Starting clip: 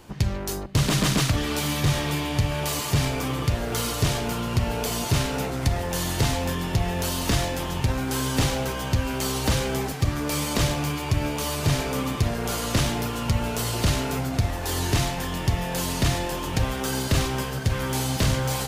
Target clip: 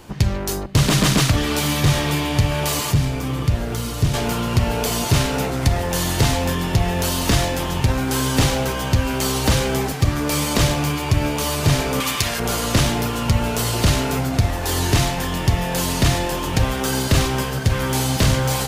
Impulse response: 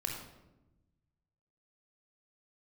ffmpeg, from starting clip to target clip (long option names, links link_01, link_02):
-filter_complex "[0:a]asettb=1/sr,asplit=3[link_01][link_02][link_03];[link_01]atrim=end=2.914[link_04];[link_02]atrim=start=2.91:end=4.14,asetpts=PTS-STARTPTS,afade=type=in:duration=0.004:curve=qsin,afade=type=out:start_time=1.226:duration=0.004:curve=qsin,acrossover=split=280[link_05][link_06];[link_06]acompressor=threshold=-34dB:ratio=6[link_07];[link_05][link_07]amix=inputs=2:normalize=0[link_08];[link_03]atrim=start=4.136[link_09];[link_04][link_08]acrossfade=duration=0.004:curve1=hsin:curve2=qsin[link_10];[link_10][link_09]acrossfade=duration=0.004:curve1=qsin:curve2=hsin,asettb=1/sr,asplit=3[link_11][link_12][link_13];[link_11]atrim=end=12.004[link_14];[link_12]atrim=start=12:end=12.4,asetpts=PTS-STARTPTS,afade=type=in:duration=0.004:curve=qsin,afade=type=out:start_time=0.396:duration=0.004:curve=qsin,tiltshelf=frequency=910:gain=-9[link_15];[link_13]atrim=start=12.396[link_16];[link_14][link_15]acrossfade=duration=0.004:curve1=hsin:curve2=qsin[link_17];[link_17][link_16]acrossfade=duration=0.004:curve1=qsin:curve2=hsin,volume=5.5dB"